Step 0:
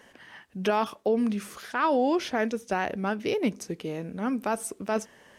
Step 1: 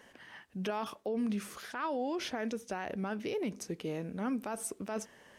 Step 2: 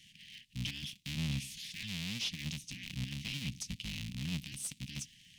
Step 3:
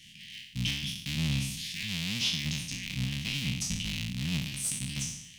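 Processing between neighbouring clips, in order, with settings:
brickwall limiter −23.5 dBFS, peak gain reduction 8 dB; level −3.5 dB
sub-harmonics by changed cycles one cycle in 3, inverted; inverse Chebyshev band-stop filter 390–1,400 Hz, stop band 50 dB; mid-hump overdrive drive 13 dB, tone 1,900 Hz, clips at −22.5 dBFS; level +5.5 dB
peak hold with a decay on every bin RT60 0.77 s; level +5 dB

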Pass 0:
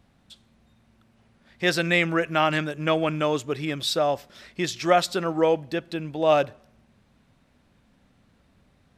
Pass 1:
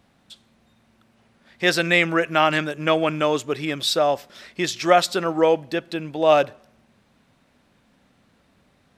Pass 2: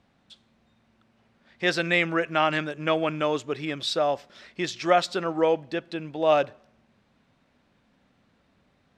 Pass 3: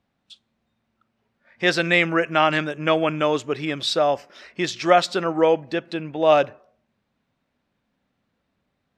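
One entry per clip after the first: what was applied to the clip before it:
low-shelf EQ 130 Hz −11 dB; level +4 dB
Bessel low-pass filter 5,600 Hz, order 2; level −4.5 dB
noise reduction from a noise print of the clip's start 13 dB; level +4.5 dB

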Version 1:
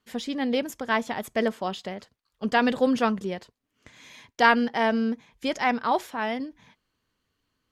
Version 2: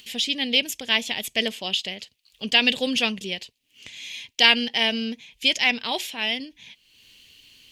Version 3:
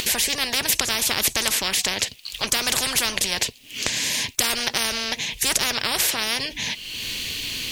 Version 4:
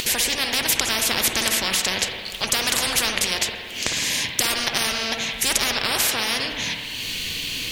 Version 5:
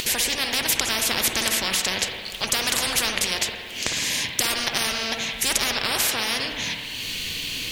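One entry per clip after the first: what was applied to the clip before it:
high shelf with overshoot 1,900 Hz +13 dB, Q 3; upward compression, threshold −34 dBFS; level −3.5 dB
every bin compressed towards the loudest bin 10 to 1
spring reverb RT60 1.8 s, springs 53/59 ms, chirp 35 ms, DRR 3 dB
surface crackle 550 per second −38 dBFS; level −1.5 dB

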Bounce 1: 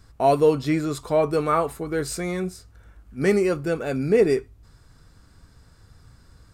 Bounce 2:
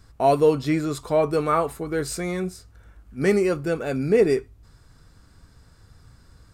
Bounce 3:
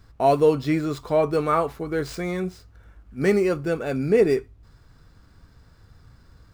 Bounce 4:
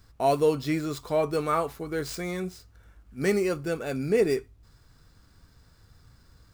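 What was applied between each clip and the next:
no processing that can be heard
running median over 5 samples
high-shelf EQ 3,900 Hz +9.5 dB; level −5 dB

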